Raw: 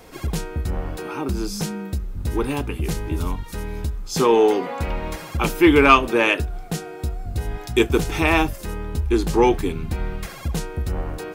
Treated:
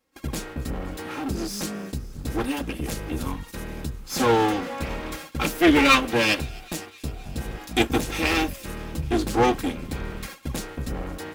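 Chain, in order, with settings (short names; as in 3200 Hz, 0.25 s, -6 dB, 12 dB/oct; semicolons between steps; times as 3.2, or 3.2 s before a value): minimum comb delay 3.7 ms; gate -35 dBFS, range -25 dB; HPF 84 Hz 6 dB/oct; bell 760 Hz -3.5 dB 1.3 oct; thin delay 0.257 s, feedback 76%, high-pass 2800 Hz, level -21 dB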